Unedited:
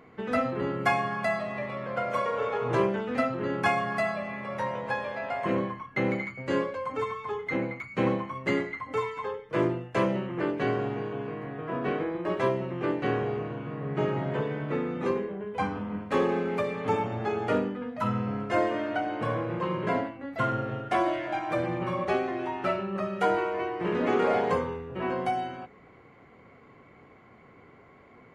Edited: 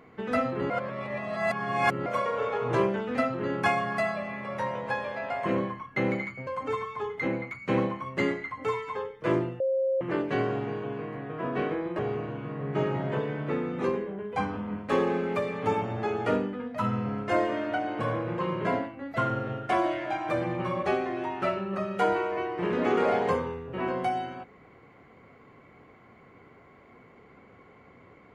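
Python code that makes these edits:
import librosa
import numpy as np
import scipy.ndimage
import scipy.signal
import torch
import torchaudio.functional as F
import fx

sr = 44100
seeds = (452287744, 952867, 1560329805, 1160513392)

y = fx.edit(x, sr, fx.reverse_span(start_s=0.7, length_s=1.36),
    fx.cut(start_s=6.47, length_s=0.29),
    fx.bleep(start_s=9.89, length_s=0.41, hz=533.0, db=-23.0),
    fx.cut(start_s=12.28, length_s=0.93), tone=tone)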